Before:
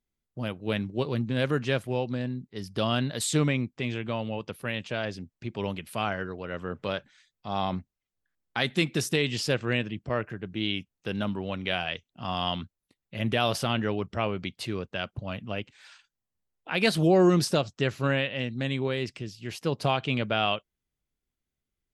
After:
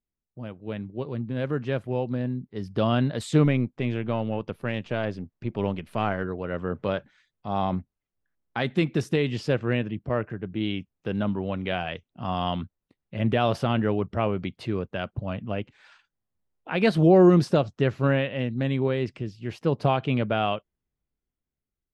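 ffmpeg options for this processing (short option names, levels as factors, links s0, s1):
-filter_complex "[0:a]asettb=1/sr,asplit=3[s0][s1][s2];[s0]atrim=end=3.454[s3];[s1]atrim=start=3.45:end=6.24,asetpts=PTS-STARTPTS,afade=t=in:d=0.004:c=qsin,afade=t=out:st=2.786:d=0.004:c=qsin,aeval=exprs='if(lt(val(0),0),0.708*val(0),val(0))':c=same[s4];[s2]atrim=start=6.236[s5];[s3][s4]acrossfade=d=0.004:c1=hsin:c2=qsin[s6];[s6][s5]acrossfade=d=0.004:c1=qsin:c2=hsin,dynaudnorm=f=560:g=7:m=3.76,lowpass=f=1100:p=1,volume=0.631"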